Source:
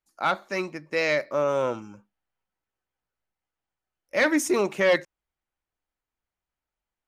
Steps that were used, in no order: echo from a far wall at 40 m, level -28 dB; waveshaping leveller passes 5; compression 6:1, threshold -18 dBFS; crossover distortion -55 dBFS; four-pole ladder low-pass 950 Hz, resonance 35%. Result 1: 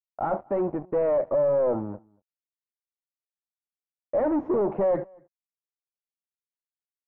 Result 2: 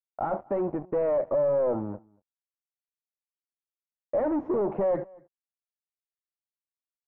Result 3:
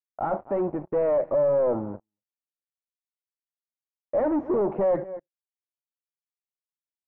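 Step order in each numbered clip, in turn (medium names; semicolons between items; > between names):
crossover distortion > waveshaping leveller > four-pole ladder low-pass > compression > echo from a far wall; crossover distortion > waveshaping leveller > echo from a far wall > compression > four-pole ladder low-pass; crossover distortion > echo from a far wall > compression > waveshaping leveller > four-pole ladder low-pass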